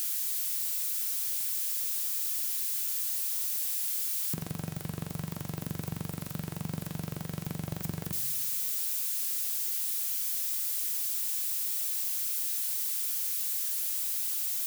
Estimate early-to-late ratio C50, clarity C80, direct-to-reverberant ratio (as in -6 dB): 14.0 dB, 16.0 dB, 10.0 dB